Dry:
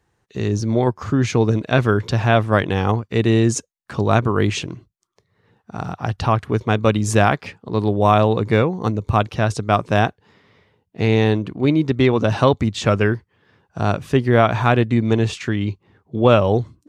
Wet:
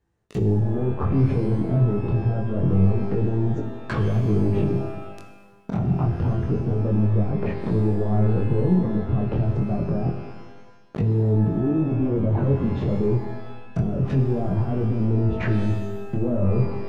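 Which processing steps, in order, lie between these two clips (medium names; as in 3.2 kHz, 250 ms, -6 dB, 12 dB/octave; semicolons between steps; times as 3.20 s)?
waveshaping leveller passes 5; low-pass that closes with the level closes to 450 Hz, closed at -7.5 dBFS; bass shelf 500 Hz +9.5 dB; peak limiter -14 dBFS, peak gain reduction 20.5 dB; chorus 0.26 Hz, delay 18 ms, depth 6.7 ms; pitch-shifted reverb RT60 1.2 s, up +12 st, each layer -8 dB, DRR 6 dB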